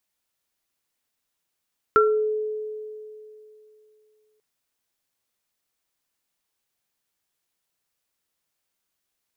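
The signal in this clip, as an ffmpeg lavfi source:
-f lavfi -i "aevalsrc='0.178*pow(10,-3*t/2.89)*sin(2*PI*429*t)+0.282*pow(10,-3*t/0.33)*sin(2*PI*1360*t)':d=2.44:s=44100"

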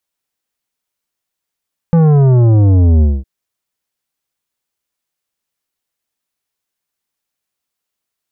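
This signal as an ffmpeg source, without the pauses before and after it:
-f lavfi -i "aevalsrc='0.447*clip((1.31-t)/0.22,0,1)*tanh(3.55*sin(2*PI*170*1.31/log(65/170)*(exp(log(65/170)*t/1.31)-1)))/tanh(3.55)':d=1.31:s=44100"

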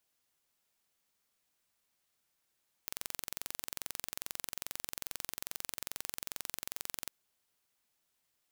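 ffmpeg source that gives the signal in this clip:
-f lavfi -i "aevalsrc='0.299*eq(mod(n,1969),0)':d=4.22:s=44100"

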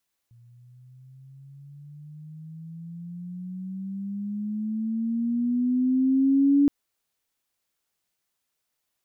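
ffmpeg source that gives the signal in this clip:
-f lavfi -i "aevalsrc='pow(10,(-15+35*(t/6.37-1))/20)*sin(2*PI*117*6.37/(15.5*log(2)/12)*(exp(15.5*log(2)/12*t/6.37)-1))':d=6.37:s=44100"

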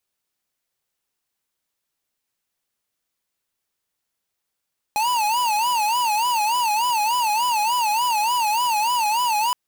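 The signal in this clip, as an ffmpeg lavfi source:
-f lavfi -i "aevalsrc='0.0944*(2*lt(mod((913*t-81/(2*PI*3.4)*sin(2*PI*3.4*t)),1),0.5)-1)':d=4.57:s=44100"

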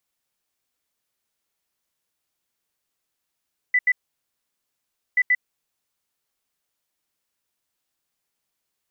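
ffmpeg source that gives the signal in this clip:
-f lavfi -i "aevalsrc='0.188*sin(2*PI*1990*t)*clip(min(mod(mod(t,1.43),0.13),0.05-mod(mod(t,1.43),0.13))/0.005,0,1)*lt(mod(t,1.43),0.26)':d=2.86:s=44100"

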